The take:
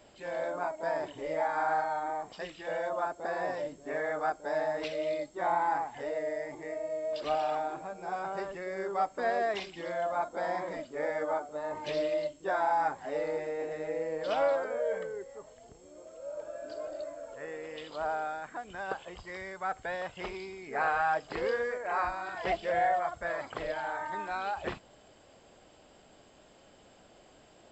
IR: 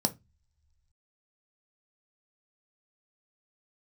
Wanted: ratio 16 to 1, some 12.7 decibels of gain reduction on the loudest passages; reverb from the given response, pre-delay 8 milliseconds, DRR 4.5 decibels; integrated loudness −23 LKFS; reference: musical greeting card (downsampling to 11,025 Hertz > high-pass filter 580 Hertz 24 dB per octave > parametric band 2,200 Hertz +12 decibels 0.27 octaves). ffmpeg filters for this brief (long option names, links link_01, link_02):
-filter_complex "[0:a]acompressor=threshold=-37dB:ratio=16,asplit=2[link_01][link_02];[1:a]atrim=start_sample=2205,adelay=8[link_03];[link_02][link_03]afir=irnorm=-1:irlink=0,volume=-11dB[link_04];[link_01][link_04]amix=inputs=2:normalize=0,aresample=11025,aresample=44100,highpass=frequency=580:width=0.5412,highpass=frequency=580:width=1.3066,equalizer=frequency=2200:width_type=o:width=0.27:gain=12,volume=17dB"